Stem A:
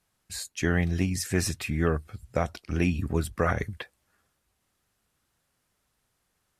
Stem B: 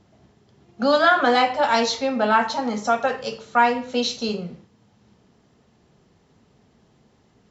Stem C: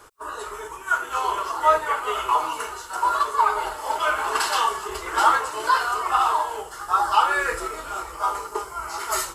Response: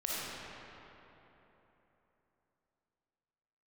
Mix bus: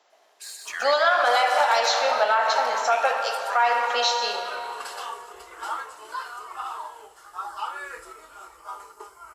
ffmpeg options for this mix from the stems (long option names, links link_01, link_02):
-filter_complex "[0:a]highpass=frequency=1200:width=0.5412,highpass=frequency=1200:width=1.3066,deesser=0.75,adelay=100,volume=0.5dB,asplit=2[link_01][link_02];[link_02]volume=-4dB[link_03];[1:a]highpass=frequency=580:width=0.5412,highpass=frequency=580:width=1.3066,volume=0dB,asplit=2[link_04][link_05];[link_05]volume=-8dB[link_06];[2:a]lowshelf=frequency=250:gain=-9,adelay=450,volume=-13dB[link_07];[3:a]atrim=start_sample=2205[link_08];[link_06][link_08]afir=irnorm=-1:irlink=0[link_09];[link_03]aecho=0:1:125|250|375|500|625:1|0.34|0.116|0.0393|0.0134[link_10];[link_01][link_04][link_07][link_09][link_10]amix=inputs=5:normalize=0,alimiter=limit=-10.5dB:level=0:latency=1:release=137"